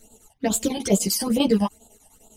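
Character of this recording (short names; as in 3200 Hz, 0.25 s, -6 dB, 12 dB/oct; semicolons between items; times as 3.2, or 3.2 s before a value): phasing stages 12, 2.3 Hz, lowest notch 400–2000 Hz; chopped level 10 Hz, depth 65%, duty 70%; a shimmering, thickened sound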